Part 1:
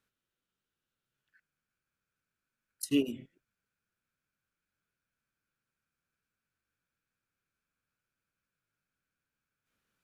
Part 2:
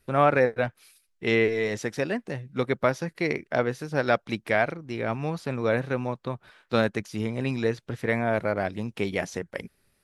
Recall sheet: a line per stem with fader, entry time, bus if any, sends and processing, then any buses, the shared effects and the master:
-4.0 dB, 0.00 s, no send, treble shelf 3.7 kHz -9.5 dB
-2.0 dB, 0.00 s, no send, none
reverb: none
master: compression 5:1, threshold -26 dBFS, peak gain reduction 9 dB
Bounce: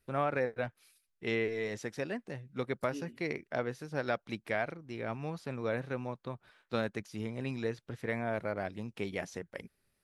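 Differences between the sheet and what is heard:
stem 1 -4.0 dB -> -15.0 dB; stem 2 -2.0 dB -> -9.0 dB

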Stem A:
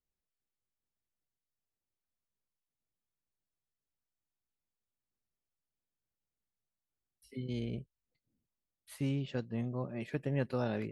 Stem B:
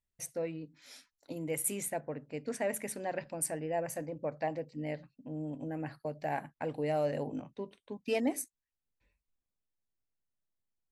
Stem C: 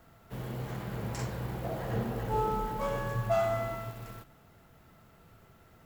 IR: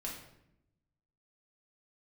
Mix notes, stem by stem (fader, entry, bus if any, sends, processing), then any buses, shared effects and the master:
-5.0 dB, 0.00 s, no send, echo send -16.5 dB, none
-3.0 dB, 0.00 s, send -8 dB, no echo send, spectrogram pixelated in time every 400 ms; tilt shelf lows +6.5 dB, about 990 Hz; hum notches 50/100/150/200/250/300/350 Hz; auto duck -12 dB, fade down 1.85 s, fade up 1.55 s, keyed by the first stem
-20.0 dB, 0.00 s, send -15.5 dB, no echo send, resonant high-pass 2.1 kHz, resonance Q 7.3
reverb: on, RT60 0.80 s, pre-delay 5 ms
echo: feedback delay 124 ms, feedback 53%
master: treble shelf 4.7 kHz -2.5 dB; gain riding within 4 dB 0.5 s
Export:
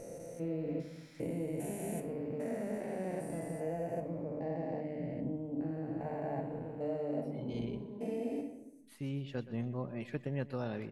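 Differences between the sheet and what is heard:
stem C -20.0 dB -> -32.0 dB; reverb return +6.5 dB

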